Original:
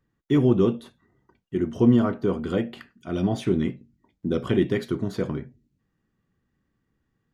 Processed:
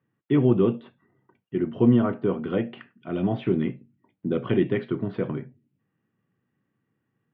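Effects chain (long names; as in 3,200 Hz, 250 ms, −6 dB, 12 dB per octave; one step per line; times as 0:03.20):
elliptic band-pass filter 110–2,900 Hz, stop band 40 dB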